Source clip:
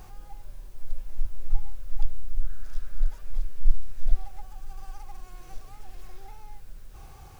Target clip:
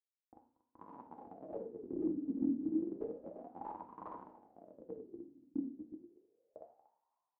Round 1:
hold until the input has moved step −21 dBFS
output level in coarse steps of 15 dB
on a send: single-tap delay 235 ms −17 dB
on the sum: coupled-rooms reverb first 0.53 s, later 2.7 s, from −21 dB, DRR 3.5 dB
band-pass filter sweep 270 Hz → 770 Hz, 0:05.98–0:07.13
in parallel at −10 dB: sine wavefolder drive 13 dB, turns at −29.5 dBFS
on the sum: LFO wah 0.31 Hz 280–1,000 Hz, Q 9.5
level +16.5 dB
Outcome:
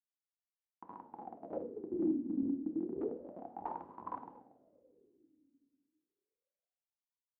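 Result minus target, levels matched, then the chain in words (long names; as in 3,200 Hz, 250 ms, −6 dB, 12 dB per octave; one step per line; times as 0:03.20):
hold until the input has moved: distortion +5 dB
hold until the input has moved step −27.5 dBFS
output level in coarse steps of 15 dB
on a send: single-tap delay 235 ms −17 dB
on the sum: coupled-rooms reverb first 0.53 s, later 2.7 s, from −21 dB, DRR 3.5 dB
band-pass filter sweep 270 Hz → 770 Hz, 0:05.98–0:07.13
in parallel at −10 dB: sine wavefolder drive 13 dB, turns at −29.5 dBFS
on the sum: LFO wah 0.31 Hz 280–1,000 Hz, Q 9.5
level +16.5 dB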